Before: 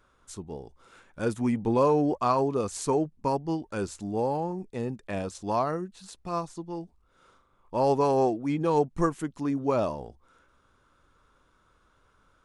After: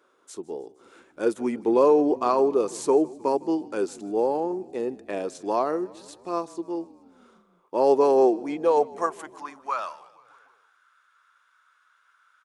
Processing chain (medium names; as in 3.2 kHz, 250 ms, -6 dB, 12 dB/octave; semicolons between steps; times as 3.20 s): high-pass sweep 360 Hz -> 1.5 kHz, 8.29–9.99 s; frequency-shifting echo 155 ms, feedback 65%, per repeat -31 Hz, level -22 dB